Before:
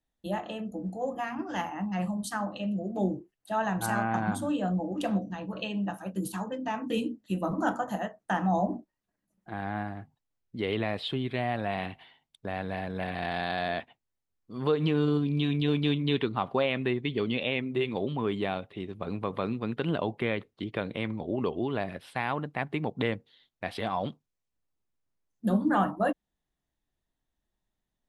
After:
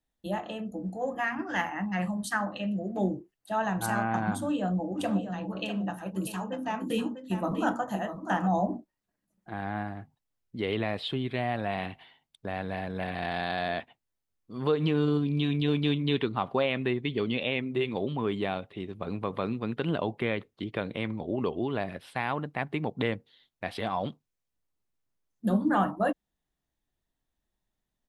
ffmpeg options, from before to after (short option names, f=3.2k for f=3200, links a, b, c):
-filter_complex "[0:a]asettb=1/sr,asplit=3[a][b][c];[a]atrim=end=0.954[d];[b]atrim=start=0.95:end=3.09,asetpts=PTS-STARTPTS,afade=t=in:d=0.004:c=qsin,afade=t=out:st=2.136:d=0.004:c=qsin,equalizer=f=1.8k:t=o:w=0.77:g=9.5[e];[c]atrim=start=3.086[f];[d][e]acrossfade=d=0.004:c1=hsin:c2=qsin[g];[g][f]acrossfade=d=0.004:c1=qsin:c2=hsin,asplit=3[h][i][j];[h]afade=t=out:st=4.98:d=0.02[k];[i]aecho=1:1:646:0.335,afade=t=in:st=4.98:d=0.02,afade=t=out:st=8.47:d=0.02[l];[j]afade=t=in:st=8.47:d=0.02[m];[k][l][m]amix=inputs=3:normalize=0"